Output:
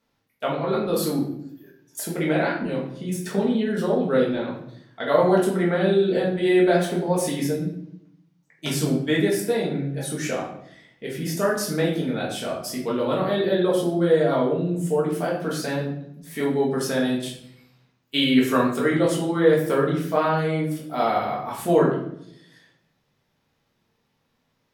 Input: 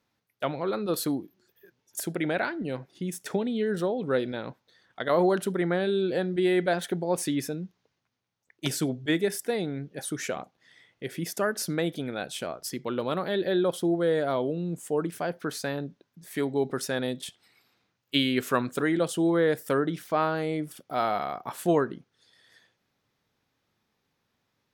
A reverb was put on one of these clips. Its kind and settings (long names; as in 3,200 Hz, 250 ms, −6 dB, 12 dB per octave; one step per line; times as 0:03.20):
rectangular room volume 150 cubic metres, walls mixed, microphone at 1.6 metres
level −1.5 dB